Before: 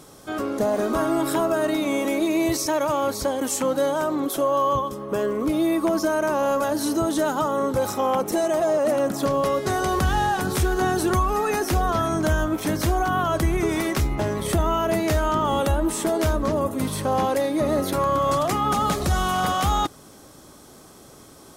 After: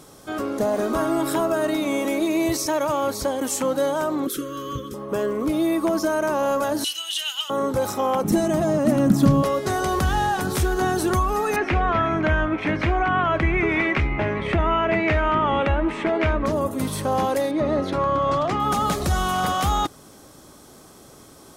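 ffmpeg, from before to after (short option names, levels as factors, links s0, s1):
-filter_complex "[0:a]asettb=1/sr,asplit=3[s0][s1][s2];[s0]atrim=end=4.274[s3];[s1]atrim=start=4.27:end=4.94,asetpts=PTS-STARTPTS,afade=t=in:d=0.004:c=qsin,afade=t=out:st=0.666:d=0.004:c=qsin,asuperstop=centerf=780:order=20:qfactor=1.2[s4];[s2]atrim=start=4.936[s5];[s3][s4]acrossfade=d=0.004:c1=hsin:c2=qsin[s6];[s6][s5]acrossfade=d=0.004:c1=qsin:c2=hsin,asettb=1/sr,asplit=3[s7][s8][s9];[s7]atrim=end=6.844[s10];[s8]atrim=start=6.84:end=7.5,asetpts=PTS-STARTPTS,afade=t=in:d=0.004:c=qsin,afade=t=out:st=0.656:d=0.004:c=qsin,highpass=f=2900:t=q:w=15[s11];[s9]atrim=start=7.496[s12];[s10][s11]acrossfade=d=0.004:c1=hsin:c2=qsin[s13];[s13][s12]acrossfade=d=0.004:c1=qsin:c2=hsin,asettb=1/sr,asplit=3[s14][s15][s16];[s14]atrim=end=8.244[s17];[s15]atrim=start=8.24:end=9.43,asetpts=PTS-STARTPTS,afade=t=in:d=0.004:c=qsin,afade=t=out:st=1.186:d=0.004:c=qsin,lowshelf=f=310:t=q:w=1.5:g=12.5[s18];[s16]atrim=start=9.426[s19];[s17][s18]acrossfade=d=0.004:c1=hsin:c2=qsin[s20];[s20][s19]acrossfade=d=0.004:c1=qsin:c2=hsin,asettb=1/sr,asplit=3[s21][s22][s23];[s21]atrim=end=11.564[s24];[s22]atrim=start=11.56:end=16.46,asetpts=PTS-STARTPTS,afade=t=in:d=0.004:c=qsin,afade=t=out:st=4.896:d=0.004:c=qsin,lowpass=f=2300:t=q:w=3.7[s25];[s23]atrim=start=16.456[s26];[s24][s25]acrossfade=d=0.004:c1=hsin:c2=qsin[s27];[s27][s26]acrossfade=d=0.004:c1=qsin:c2=hsin,asettb=1/sr,asplit=3[s28][s29][s30];[s28]atrim=end=17.514[s31];[s29]atrim=start=17.51:end=18.6,asetpts=PTS-STARTPTS,afade=t=in:d=0.004:c=qsin,afade=t=out:st=1.086:d=0.004:c=qsin,lowpass=3800[s32];[s30]atrim=start=18.596[s33];[s31][s32]acrossfade=d=0.004:c1=hsin:c2=qsin[s34];[s34][s33]acrossfade=d=0.004:c1=qsin:c2=hsin"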